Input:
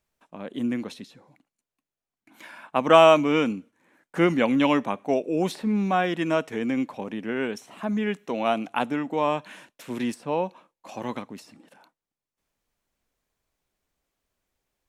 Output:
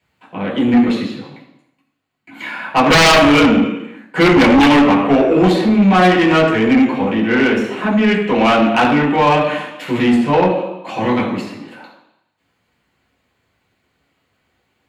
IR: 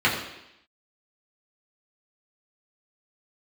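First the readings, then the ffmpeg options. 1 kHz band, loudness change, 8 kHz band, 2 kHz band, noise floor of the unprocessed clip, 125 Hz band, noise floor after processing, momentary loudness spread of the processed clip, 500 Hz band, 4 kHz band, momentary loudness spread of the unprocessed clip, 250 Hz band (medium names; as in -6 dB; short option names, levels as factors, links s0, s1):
+10.5 dB, +11.0 dB, +16.0 dB, +15.0 dB, under -85 dBFS, +14.0 dB, -67 dBFS, 15 LU, +8.5 dB, +14.5 dB, 17 LU, +13.5 dB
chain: -filter_complex "[1:a]atrim=start_sample=2205[s0];[0:a][s0]afir=irnorm=-1:irlink=0,acontrast=61,volume=0.501"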